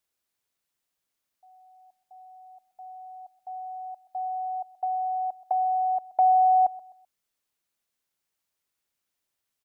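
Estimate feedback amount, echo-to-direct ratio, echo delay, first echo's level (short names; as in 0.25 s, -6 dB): 32%, -18.5 dB, 0.128 s, -19.0 dB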